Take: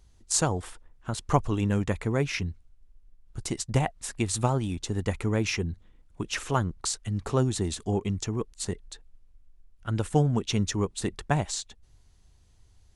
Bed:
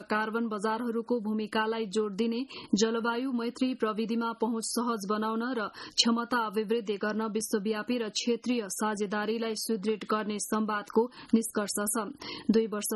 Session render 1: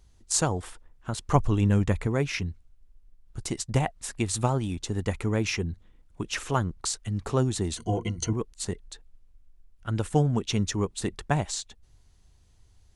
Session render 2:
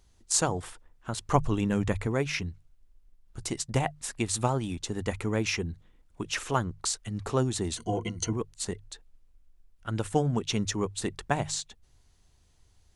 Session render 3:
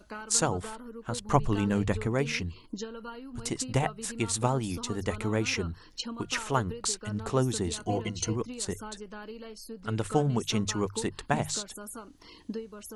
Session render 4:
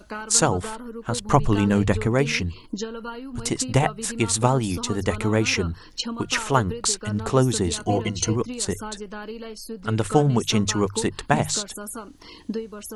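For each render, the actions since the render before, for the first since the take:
1.35–2.07 s: bass shelf 150 Hz +7.5 dB; 7.77–8.33 s: rippled EQ curve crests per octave 1.9, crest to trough 17 dB
bass shelf 240 Hz -4 dB; hum notches 50/100/150 Hz
add bed -12 dB
trim +7.5 dB; peak limiter -3 dBFS, peak gain reduction 3 dB

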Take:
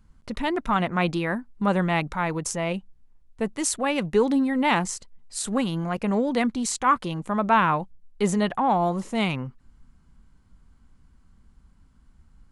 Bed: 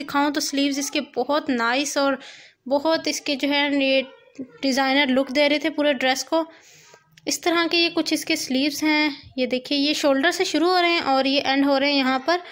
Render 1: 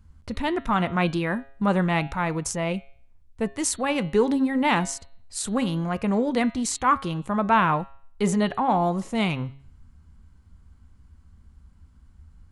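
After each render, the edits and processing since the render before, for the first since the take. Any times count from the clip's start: peaking EQ 80 Hz +12.5 dB 0.77 oct; de-hum 136.8 Hz, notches 32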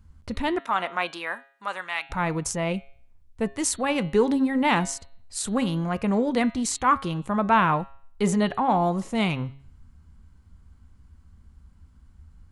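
0.58–2.09 s: high-pass 450 Hz -> 1.5 kHz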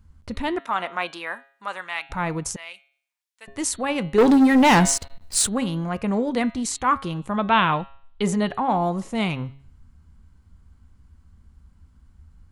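2.56–3.48 s: Bessel high-pass 2.5 kHz; 4.18–5.47 s: waveshaping leveller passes 3; 7.37–8.22 s: resonant low-pass 3.4 kHz, resonance Q 4.3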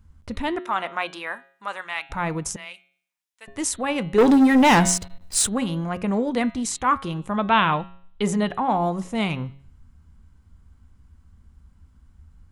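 band-stop 4.4 kHz, Q 16; de-hum 180.8 Hz, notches 3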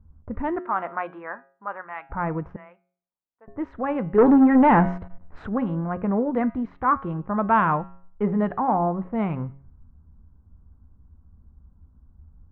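level-controlled noise filter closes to 790 Hz, open at -19 dBFS; low-pass 1.6 kHz 24 dB/octave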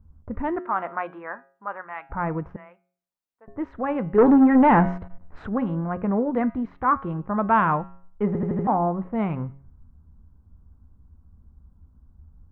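8.27 s: stutter in place 0.08 s, 5 plays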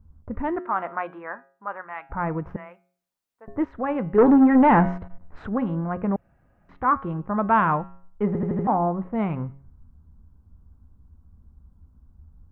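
2.47–3.65 s: gain +5 dB; 6.16–6.69 s: room tone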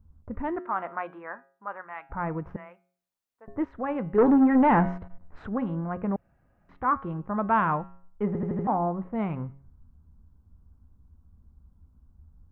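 trim -4 dB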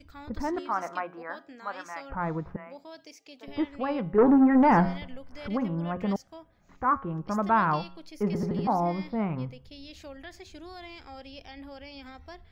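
add bed -25.5 dB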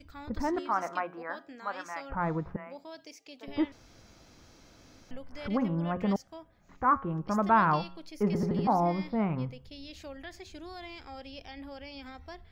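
3.72–5.11 s: room tone

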